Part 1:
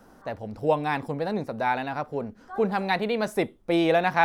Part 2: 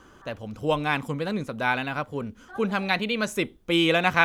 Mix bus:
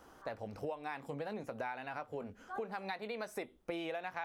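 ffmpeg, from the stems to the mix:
-filter_complex "[0:a]highpass=450,volume=-4.5dB,asplit=2[a][b];[1:a]flanger=delay=16:depth=6.9:speed=0.58,volume=-1,volume=-8dB[c];[b]apad=whole_len=187172[d];[c][d]sidechaincompress=threshold=-35dB:ratio=8:attack=16:release=171[e];[a][e]amix=inputs=2:normalize=0,acompressor=threshold=-37dB:ratio=10"

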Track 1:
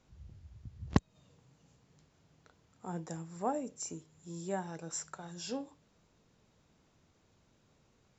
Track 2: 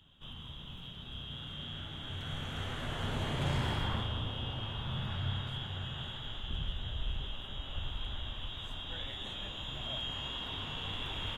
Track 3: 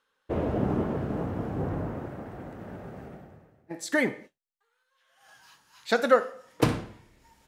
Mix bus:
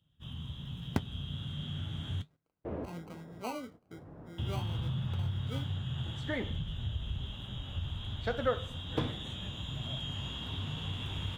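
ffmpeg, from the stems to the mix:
-filter_complex "[0:a]lowpass=1.6k,acrusher=samples=25:mix=1:aa=0.000001,volume=0dB,asplit=2[a][b];[1:a]highpass=82,bass=f=250:g=14,treble=f=4k:g=12,acompressor=threshold=-28dB:ratio=6,volume=1dB,asplit=3[c][d][e];[c]atrim=end=2.22,asetpts=PTS-STARTPTS,afade=t=out:st=2.216:d=0.004:c=hsin[f];[d]atrim=start=2.22:end=4.38,asetpts=PTS-STARTPTS,volume=0[g];[e]atrim=start=4.38,asetpts=PTS-STARTPTS,afade=t=in:d=0.004:c=hsin[h];[f][g][h]concat=n=3:v=0:a=1[i];[2:a]aemphasis=mode=reproduction:type=cd,adelay=2350,volume=-6dB[j];[b]apad=whole_len=433241[k];[j][k]sidechaincompress=threshold=-49dB:ratio=16:attack=11:release=677[l];[a][i][l]amix=inputs=3:normalize=0,flanger=delay=5.4:depth=8:regen=-59:speed=1.2:shape=triangular,agate=range=-15dB:threshold=-53dB:ratio=16:detection=peak,highshelf=f=3.9k:g=-6.5"

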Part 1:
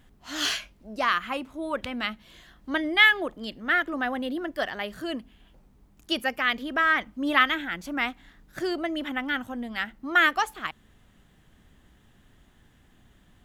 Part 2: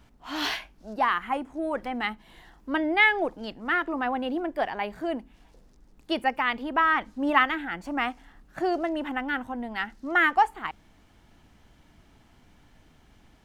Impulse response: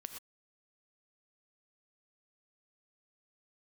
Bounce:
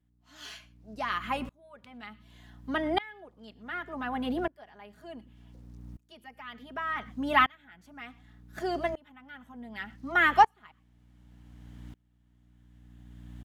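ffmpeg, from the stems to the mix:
-filter_complex "[0:a]volume=0.5dB,asplit=2[a][b];[b]volume=-11dB[c];[1:a]dynaudnorm=f=340:g=11:m=11.5dB,aeval=exprs='val(0)+0.02*(sin(2*PI*60*n/s)+sin(2*PI*2*60*n/s)/2+sin(2*PI*3*60*n/s)/3+sin(2*PI*4*60*n/s)/4+sin(2*PI*5*60*n/s)/5)':c=same,adelay=5.2,volume=-6.5dB,asplit=2[d][e];[e]apad=whole_len=592787[f];[a][f]sidechaincompress=threshold=-29dB:ratio=8:attack=16:release=168[g];[2:a]atrim=start_sample=2205[h];[c][h]afir=irnorm=-1:irlink=0[i];[g][d][i]amix=inputs=3:normalize=0,highpass=50,aeval=exprs='val(0)*pow(10,-29*if(lt(mod(-0.67*n/s,1),2*abs(-0.67)/1000),1-mod(-0.67*n/s,1)/(2*abs(-0.67)/1000),(mod(-0.67*n/s,1)-2*abs(-0.67)/1000)/(1-2*abs(-0.67)/1000))/20)':c=same"

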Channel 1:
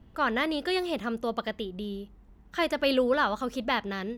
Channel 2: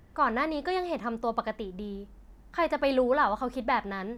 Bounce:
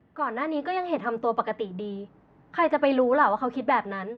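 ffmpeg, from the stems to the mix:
-filter_complex "[0:a]volume=-5.5dB[a];[1:a]adelay=7,volume=-3.5dB,asplit=2[b][c];[c]apad=whole_len=184309[d];[a][d]sidechaincompress=threshold=-33dB:ratio=8:attack=16:release=366[e];[e][b]amix=inputs=2:normalize=0,dynaudnorm=f=230:g=5:m=7.5dB,highpass=120,lowpass=2.2k"

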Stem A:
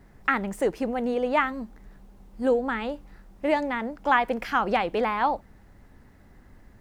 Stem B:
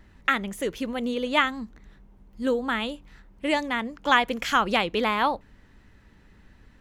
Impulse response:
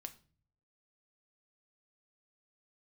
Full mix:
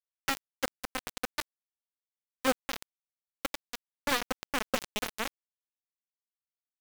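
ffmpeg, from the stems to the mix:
-filter_complex "[0:a]equalizer=f=160:t=o:w=0.33:g=-10,equalizer=f=315:t=o:w=0.33:g=3,equalizer=f=800:t=o:w=0.33:g=-7,equalizer=f=3.15k:t=o:w=0.33:g=6,volume=-9.5dB,asplit=2[a][b];[b]volume=-12.5dB[c];[1:a]highshelf=f=9.7k:g=9,acrossover=split=240|650|6400[d][e][f][g];[d]acompressor=threshold=-48dB:ratio=4[h];[e]acompressor=threshold=-35dB:ratio=4[i];[f]acompressor=threshold=-42dB:ratio=4[j];[g]acompressor=threshold=-54dB:ratio=4[k];[h][i][j][k]amix=inputs=4:normalize=0,adelay=5,volume=2.5dB[l];[2:a]atrim=start_sample=2205[m];[c][m]afir=irnorm=-1:irlink=0[n];[a][l][n]amix=inputs=3:normalize=0,aeval=exprs='0.562*(cos(1*acos(clip(val(0)/0.562,-1,1)))-cos(1*PI/2))+0.141*(cos(2*acos(clip(val(0)/0.562,-1,1)))-cos(2*PI/2))+0.0251*(cos(5*acos(clip(val(0)/0.562,-1,1)))-cos(5*PI/2))':c=same,aeval=exprs='val(0)*gte(abs(val(0)),0.1)':c=same"

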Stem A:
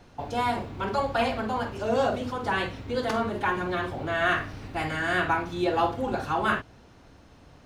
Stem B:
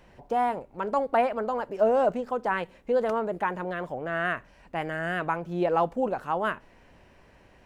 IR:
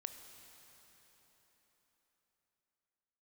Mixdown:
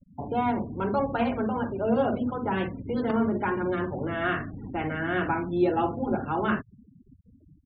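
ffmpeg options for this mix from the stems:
-filter_complex "[0:a]lowpass=3.3k,volume=-5dB[a];[1:a]highpass=110,acompressor=threshold=-37dB:ratio=2,volume=-1,adelay=4.3,volume=-2dB[b];[a][b]amix=inputs=2:normalize=0,afftfilt=real='re*gte(hypot(re,im),0.00891)':imag='im*gte(hypot(re,im),0.00891)':win_size=1024:overlap=0.75,equalizer=f=210:w=0.85:g=12"

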